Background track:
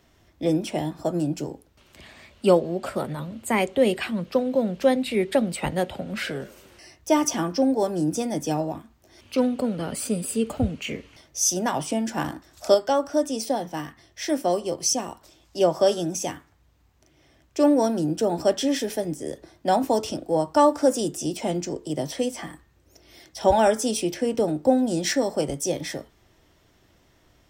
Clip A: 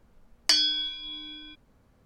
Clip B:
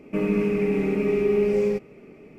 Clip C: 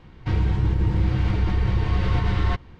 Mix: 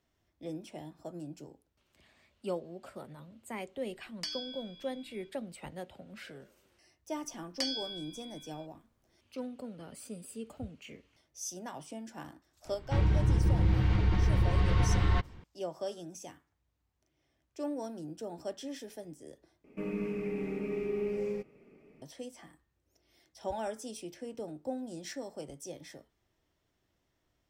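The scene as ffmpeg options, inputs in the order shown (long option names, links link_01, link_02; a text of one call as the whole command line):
ffmpeg -i bed.wav -i cue0.wav -i cue1.wav -i cue2.wav -filter_complex "[1:a]asplit=2[link_01][link_02];[0:a]volume=-18dB[link_03];[link_02]acrusher=bits=11:mix=0:aa=0.000001[link_04];[link_03]asplit=2[link_05][link_06];[link_05]atrim=end=19.644[link_07];[2:a]atrim=end=2.38,asetpts=PTS-STARTPTS,volume=-12.5dB[link_08];[link_06]atrim=start=22.016[link_09];[link_01]atrim=end=2.05,asetpts=PTS-STARTPTS,volume=-17dB,afade=type=in:duration=0.004:curve=hsin,afade=type=out:start_time=2.046:duration=0.004:curve=hsin,adelay=3740[link_10];[link_04]atrim=end=2.05,asetpts=PTS-STARTPTS,volume=-13dB,afade=type=in:duration=0.004:curve=hsin,afade=type=out:start_time=2.046:duration=0.004:curve=hsin,adelay=7110[link_11];[3:a]atrim=end=2.79,asetpts=PTS-STARTPTS,volume=-5dB,afade=type=in:duration=0.004:curve=hsin,afade=type=out:start_time=2.786:duration=0.004:curve=hsin,adelay=12650[link_12];[link_07][link_08]acrossfade=duration=0.004:curve1=hsin:curve2=hsin[link_13];[link_13][link_09]acrossfade=duration=0.004:curve1=hsin:curve2=hsin[link_14];[link_14][link_10][link_11][link_12]amix=inputs=4:normalize=0" out.wav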